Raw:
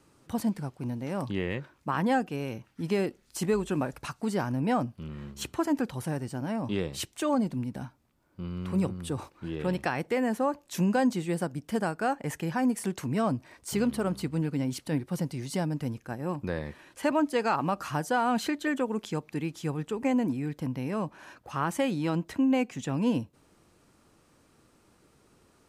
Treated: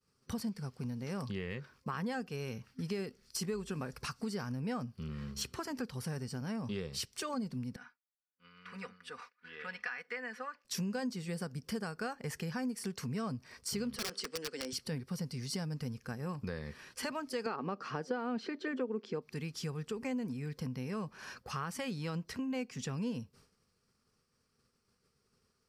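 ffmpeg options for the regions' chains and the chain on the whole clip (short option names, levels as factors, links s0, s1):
-filter_complex "[0:a]asettb=1/sr,asplit=3[s0][s1][s2];[s0]atrim=end=7.764[s3];[s1]atrim=start=7.76:end=10.65,asetpts=PTS-STARTPTS,afade=t=in:d=0.004:c=qsin,afade=t=out:st=2.886:d=0.004:c=qsin,bandpass=f=1800:t=q:w=2.1,aecho=1:1:4.1:0.62,atrim=end_sample=127449[s4];[s2]atrim=start=10.646[s5];[s3][s4]acrossfade=d=0.004:c1=hsin:c2=qsin[s6];[s6][s5]acrossfade=d=0.004:c1=qsin:c2=hsin,asettb=1/sr,asplit=3[s7][s8][s9];[s7]atrim=end=13.964[s10];[s8]atrim=start=13.96:end=14.73,asetpts=PTS-STARTPTS,afade=t=in:d=0.004:c=qsin,afade=t=out:st=0.766:d=0.004:c=qsin,highpass=f=310:w=0.5412,highpass=f=310:w=1.3066,equalizer=f=510:t=q:w=4:g=5,equalizer=f=1000:t=q:w=4:g=-5,equalizer=f=1700:t=q:w=4:g=7,equalizer=f=3200:t=q:w=4:g=6,equalizer=f=5500:t=q:w=4:g=6,equalizer=f=8200:t=q:w=4:g=6,lowpass=f=9300:w=0.5412,lowpass=f=9300:w=1.3066,aeval=exprs='(mod(18.8*val(0)+1,2)-1)/18.8':c=same[s11];[s9]atrim=start=14.726[s12];[s10][s11]acrossfade=d=0.004:c1=hsin:c2=qsin[s13];[s13][s12]acrossfade=d=0.004:c1=qsin:c2=hsin,asettb=1/sr,asplit=3[s14][s15][s16];[s14]atrim=end=17.464[s17];[s15]atrim=start=17.46:end=19.22,asetpts=PTS-STARTPTS,afade=t=in:d=0.004:c=qsin,afade=t=out:st=1.756:d=0.004:c=qsin,highpass=210,lowpass=3600,equalizer=f=340:t=o:w=1.8:g=11[s18];[s16]atrim=start=19.216[s19];[s17][s18]acrossfade=d=0.004:c1=hsin:c2=qsin[s20];[s20][s19]acrossfade=d=0.004:c1=qsin:c2=hsin,agate=range=0.0224:threshold=0.00282:ratio=3:detection=peak,superequalizer=6b=0.282:8b=0.447:9b=0.501:14b=2.51,acompressor=threshold=0.00891:ratio=3,volume=1.33"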